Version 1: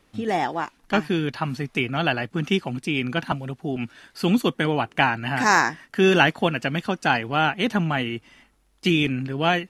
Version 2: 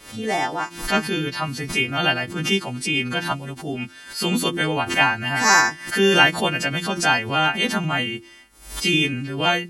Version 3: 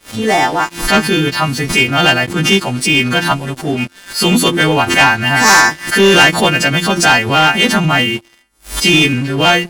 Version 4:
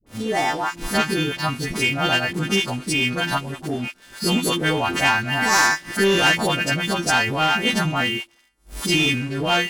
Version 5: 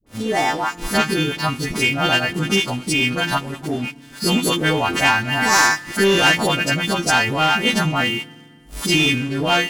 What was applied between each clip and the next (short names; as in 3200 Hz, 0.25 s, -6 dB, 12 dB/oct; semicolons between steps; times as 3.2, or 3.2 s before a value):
frequency quantiser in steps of 2 st; de-hum 85.92 Hz, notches 4; backwards sustainer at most 110 dB/s
sample leveller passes 3
dispersion highs, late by 65 ms, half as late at 650 Hz; gain -9 dB
in parallel at -6 dB: crossover distortion -39 dBFS; on the sum: FDN reverb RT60 1.9 s, low-frequency decay 1.4×, high-frequency decay 1×, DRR 19.5 dB; gain -1 dB